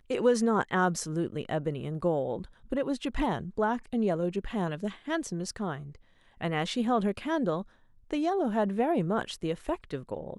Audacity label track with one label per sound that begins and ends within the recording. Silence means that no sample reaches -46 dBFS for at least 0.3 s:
6.410000	7.630000	sound